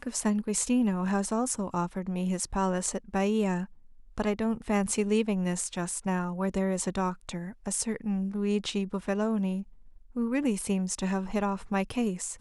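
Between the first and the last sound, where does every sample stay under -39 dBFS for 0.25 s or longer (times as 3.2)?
3.65–4.18
9.63–10.16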